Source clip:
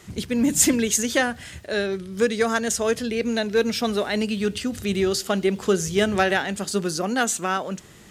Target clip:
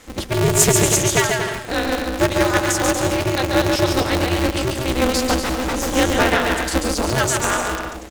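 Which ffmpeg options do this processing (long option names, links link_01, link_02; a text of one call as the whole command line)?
ffmpeg -i in.wav -filter_complex "[0:a]aecho=1:1:140|238|306.6|354.6|388.2:0.631|0.398|0.251|0.158|0.1,asettb=1/sr,asplit=3[link_01][link_02][link_03];[link_01]atrim=end=5.424[link_04];[link_02]atrim=start=5.42:end=5.96,asetpts=PTS-STARTPTS,afade=type=in:duration=0.004:curve=qsin,afade=type=out:start_time=0.536:duration=0.004:curve=qsin,aeval=exprs='0.106*(abs(mod(val(0)/0.106+3,4)-2)-1)':channel_layout=same[link_05];[link_03]atrim=start=5.956[link_06];[link_04][link_05]acrossfade=duration=0.004:curve1=hsin:curve2=qsin[link_07];[link_07][link_06]acrossfade=duration=0.004:curve1=qsin:curve2=hsin,aeval=exprs='val(0)*sgn(sin(2*PI*130*n/s))':channel_layout=same,volume=2.5dB" out.wav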